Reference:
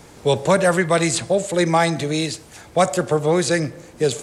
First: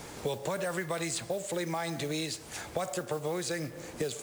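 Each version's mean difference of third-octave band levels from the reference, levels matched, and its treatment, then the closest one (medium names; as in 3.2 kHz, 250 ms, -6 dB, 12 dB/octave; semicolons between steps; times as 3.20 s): 7.5 dB: bass shelf 340 Hz -4.5 dB; modulation noise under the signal 19 dB; peak limiter -11 dBFS, peak gain reduction 6 dB; compression 6:1, threshold -33 dBFS, peak gain reduction 15.5 dB; trim +1.5 dB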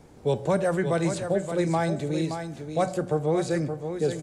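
5.5 dB: tilt shelf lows +6 dB, about 880 Hz; hum notches 60/120/180 Hz; feedback comb 760 Hz, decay 0.29 s, mix 70%; on a send: delay 573 ms -8 dB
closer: second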